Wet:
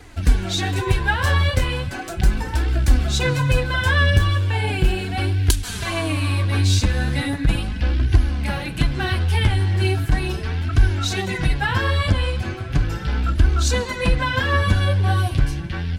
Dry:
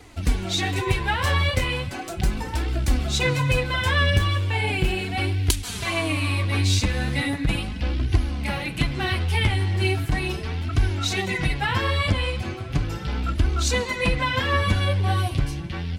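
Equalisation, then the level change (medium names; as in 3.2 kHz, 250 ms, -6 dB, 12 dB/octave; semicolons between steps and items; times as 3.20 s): bass shelf 64 Hz +8 dB; dynamic bell 2.1 kHz, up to -5 dB, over -38 dBFS, Q 1.7; peaking EQ 1.6 kHz +8.5 dB 0.25 oct; +1.5 dB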